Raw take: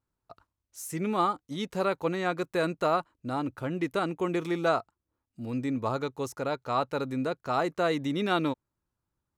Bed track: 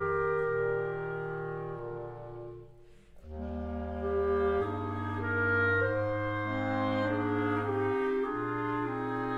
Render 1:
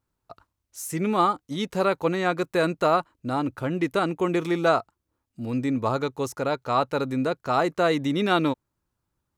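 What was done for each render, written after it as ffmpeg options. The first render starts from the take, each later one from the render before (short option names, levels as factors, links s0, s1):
-af "volume=1.78"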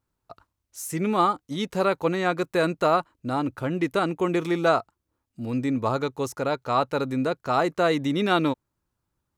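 -af anull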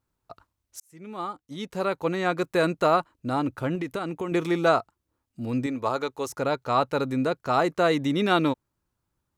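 -filter_complex "[0:a]asettb=1/sr,asplit=3[s0][s1][s2];[s0]atrim=end=3.754[s3];[s1]atrim=start=3.75:end=4.32,asetpts=PTS-STARTPTS,afade=t=in:d=0.004:c=qsin,afade=t=out:st=0.566:d=0.004:c=qsin,acompressor=threshold=0.0501:ratio=6:attack=3.2:release=140:knee=1:detection=peak[s4];[s2]atrim=start=4.316[s5];[s3][s4]acrossfade=d=0.004:c1=hsin:c2=qsin[s6];[s6][s5]acrossfade=d=0.004:c1=qsin:c2=hsin,asettb=1/sr,asplit=3[s7][s8][s9];[s7]atrim=end=5.664[s10];[s8]atrim=start=5.66:end=6.3,asetpts=PTS-STARTPTS,afade=t=in:d=0.004:c=qsin,afade=t=out:st=0.636:d=0.004:c=qsin,equalizer=f=150:t=o:w=1.5:g=-12[s11];[s9]atrim=start=6.296[s12];[s10][s11]acrossfade=d=0.004:c1=hsin:c2=qsin[s13];[s13][s12]acrossfade=d=0.004:c1=qsin:c2=hsin,asplit=2[s14][s15];[s14]atrim=end=0.8,asetpts=PTS-STARTPTS,afade=t=out:st=0.796:d=0.004:c=hsin[s16];[s15]atrim=start=0.8,asetpts=PTS-STARTPTS,afade=t=in:d=1.68[s17];[s16][s17]concat=n=2:v=0:a=1"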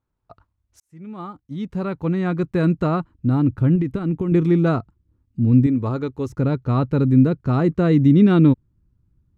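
-af "lowpass=f=1700:p=1,asubboost=boost=11.5:cutoff=210"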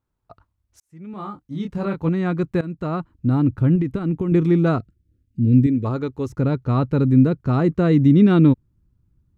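-filter_complex "[0:a]asettb=1/sr,asplit=3[s0][s1][s2];[s0]atrim=end=1.114[s3];[s1]atrim=start=1.11:end=2.09,asetpts=PTS-STARTPTS,afade=t=in:d=0.004:c=qsin,afade=t=out:st=0.976:d=0.004:c=qsin,asplit=2[s4][s5];[s5]adelay=25,volume=0.631[s6];[s4][s6]amix=inputs=2:normalize=0,atrim=end_sample=43218[s7];[s2]atrim=start=2.086[s8];[s3][s7]acrossfade=d=0.004:c1=hsin:c2=qsin[s9];[s9][s8]acrossfade=d=0.004:c1=qsin:c2=hsin,asettb=1/sr,asplit=3[s10][s11][s12];[s10]atrim=end=4.784[s13];[s11]atrim=start=4.78:end=5.85,asetpts=PTS-STARTPTS,afade=t=in:d=0.004:c=qsin,afade=t=out:st=1.066:d=0.004:c=qsin,asuperstop=centerf=950:order=4:qfactor=0.88[s14];[s12]atrim=start=5.846[s15];[s13][s14]acrossfade=d=0.004:c1=hsin:c2=qsin[s16];[s16][s15]acrossfade=d=0.004:c1=qsin:c2=hsin,asplit=2[s17][s18];[s17]atrim=end=2.61,asetpts=PTS-STARTPTS,afade=t=out:st=2.606:d=0.004:c=hsin:silence=0.11885[s19];[s18]atrim=start=2.61,asetpts=PTS-STARTPTS,afade=t=in:d=0.54:silence=0.11885[s20];[s19][s20]concat=n=2:v=0:a=1"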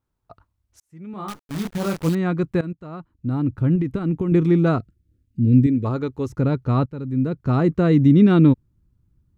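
-filter_complex "[0:a]asettb=1/sr,asplit=3[s0][s1][s2];[s0]atrim=end=1.284[s3];[s1]atrim=start=1.28:end=2.15,asetpts=PTS-STARTPTS,afade=t=in:d=0.004:c=qsin,afade=t=out:st=0.866:d=0.004:c=qsin,acrusher=bits=6:dc=4:mix=0:aa=0.000001[s4];[s2]atrim=start=2.146[s5];[s3][s4]acrossfade=d=0.004:c1=hsin:c2=qsin[s6];[s6][s5]acrossfade=d=0.004:c1=qsin:c2=hsin,asplit=3[s7][s8][s9];[s7]atrim=end=2.73,asetpts=PTS-STARTPTS,afade=t=out:st=2.726:d=0.004:c=hsin:silence=0.177828[s10];[s8]atrim=start=2.73:end=6.86,asetpts=PTS-STARTPTS,afade=t=in:d=1.27:silence=0.177828,afade=t=out:st=4.126:d=0.004:c=hsin:silence=0.199526[s11];[s9]atrim=start=6.86,asetpts=PTS-STARTPTS,afade=t=in:d=0.64:c=qua:silence=0.199526[s12];[s10][s11][s12]concat=n=3:v=0:a=1"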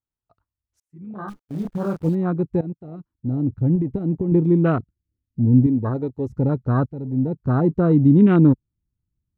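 -af "afwtdn=0.0355"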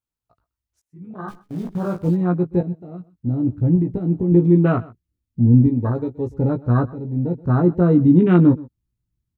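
-filter_complex "[0:a]asplit=2[s0][s1];[s1]adelay=17,volume=0.562[s2];[s0][s2]amix=inputs=2:normalize=0,aecho=1:1:126:0.0891"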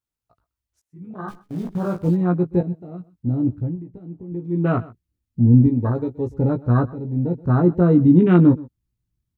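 -filter_complex "[0:a]asplit=3[s0][s1][s2];[s0]atrim=end=3.76,asetpts=PTS-STARTPTS,afade=t=out:st=3.47:d=0.29:silence=0.16788[s3];[s1]atrim=start=3.76:end=4.48,asetpts=PTS-STARTPTS,volume=0.168[s4];[s2]atrim=start=4.48,asetpts=PTS-STARTPTS,afade=t=in:d=0.29:silence=0.16788[s5];[s3][s4][s5]concat=n=3:v=0:a=1"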